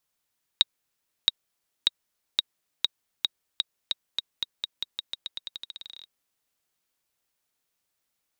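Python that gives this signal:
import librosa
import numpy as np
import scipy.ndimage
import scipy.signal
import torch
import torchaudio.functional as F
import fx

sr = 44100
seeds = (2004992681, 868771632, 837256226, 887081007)

y = fx.bouncing_ball(sr, first_gap_s=0.67, ratio=0.88, hz=3790.0, decay_ms=25.0, level_db=-4.0)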